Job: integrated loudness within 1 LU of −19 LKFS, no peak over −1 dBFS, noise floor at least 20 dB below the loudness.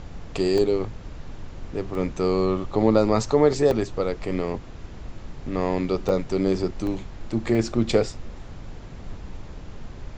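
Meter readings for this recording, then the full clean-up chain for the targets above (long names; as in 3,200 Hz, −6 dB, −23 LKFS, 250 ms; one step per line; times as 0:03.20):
number of dropouts 6; longest dropout 1.2 ms; background noise floor −40 dBFS; target noise floor −44 dBFS; integrated loudness −24.0 LKFS; sample peak −5.0 dBFS; target loudness −19.0 LKFS
→ repair the gap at 0:00.58/0:01.95/0:03.71/0:06.09/0:06.87/0:07.55, 1.2 ms
noise reduction from a noise print 6 dB
level +5 dB
brickwall limiter −1 dBFS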